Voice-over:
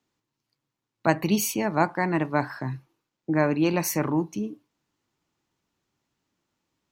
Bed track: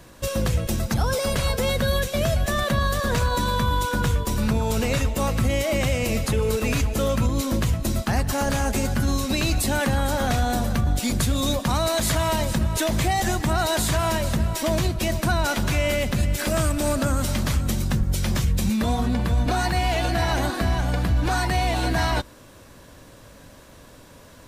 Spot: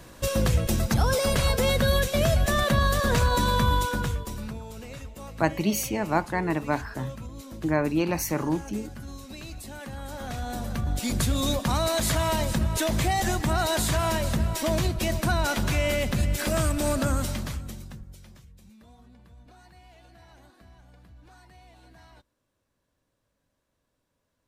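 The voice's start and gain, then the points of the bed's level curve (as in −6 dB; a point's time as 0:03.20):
4.35 s, −2.0 dB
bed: 0:03.73 0 dB
0:04.72 −17.5 dB
0:09.77 −17.5 dB
0:11.22 −2.5 dB
0:17.16 −2.5 dB
0:18.48 −30.5 dB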